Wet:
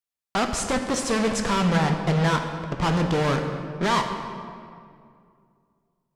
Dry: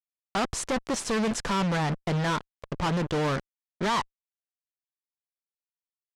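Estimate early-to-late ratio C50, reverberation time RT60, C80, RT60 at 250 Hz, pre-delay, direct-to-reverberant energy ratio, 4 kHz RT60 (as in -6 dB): 6.0 dB, 2.3 s, 7.5 dB, 2.6 s, 3 ms, 4.0 dB, 1.4 s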